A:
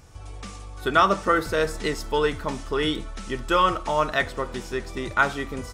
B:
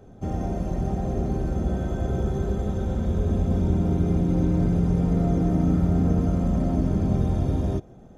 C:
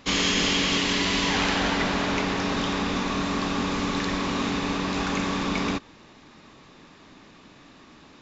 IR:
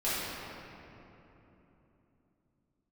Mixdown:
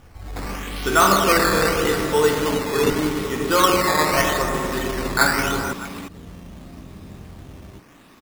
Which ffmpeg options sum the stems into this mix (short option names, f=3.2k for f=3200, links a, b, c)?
-filter_complex "[0:a]bandreject=f=620:w=13,volume=-1.5dB,asplit=3[a][b][c];[b]volume=-5.5dB[d];[c]volume=-14.5dB[e];[1:a]volume=-17dB[f];[2:a]adelay=300,volume=1dB[g];[f][g]amix=inputs=2:normalize=0,acompressor=threshold=-31dB:ratio=6,volume=0dB[h];[3:a]atrim=start_sample=2205[i];[d][i]afir=irnorm=-1:irlink=0[j];[e]aecho=0:1:622:1[k];[a][h][j][k]amix=inputs=4:normalize=0,acrusher=samples=10:mix=1:aa=0.000001:lfo=1:lforange=10:lforate=0.82"